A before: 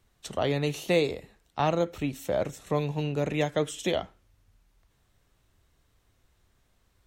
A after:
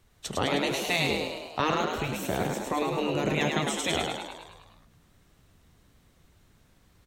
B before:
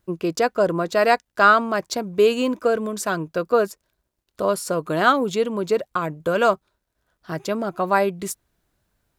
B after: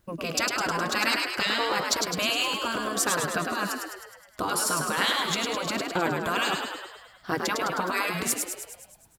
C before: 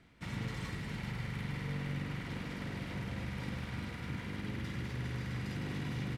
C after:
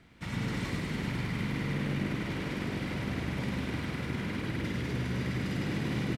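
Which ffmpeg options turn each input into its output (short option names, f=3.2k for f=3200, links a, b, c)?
-filter_complex "[0:a]afftfilt=real='re*lt(hypot(re,im),0.251)':imag='im*lt(hypot(re,im),0.251)':win_size=1024:overlap=0.75,asplit=9[a][b][c][d][e][f][g][h][i];[b]adelay=104,afreqshift=61,volume=-4dB[j];[c]adelay=208,afreqshift=122,volume=-8.6dB[k];[d]adelay=312,afreqshift=183,volume=-13.2dB[l];[e]adelay=416,afreqshift=244,volume=-17.7dB[m];[f]adelay=520,afreqshift=305,volume=-22.3dB[n];[g]adelay=624,afreqshift=366,volume=-26.9dB[o];[h]adelay=728,afreqshift=427,volume=-31.5dB[p];[i]adelay=832,afreqshift=488,volume=-36.1dB[q];[a][j][k][l][m][n][o][p][q]amix=inputs=9:normalize=0,volume=4dB"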